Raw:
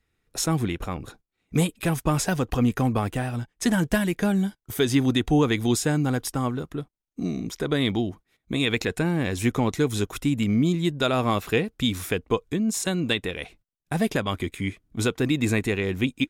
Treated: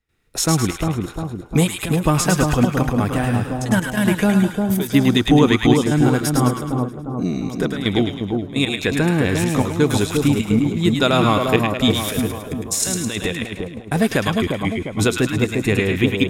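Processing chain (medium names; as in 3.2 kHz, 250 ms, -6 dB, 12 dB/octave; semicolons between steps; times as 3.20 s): 12.08–13.26 s: compressor with a negative ratio -31 dBFS, ratio -1; trance gate ".xxxxxxx.x." 170 bpm -12 dB; two-band feedback delay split 1.1 kHz, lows 352 ms, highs 106 ms, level -3.5 dB; trim +6 dB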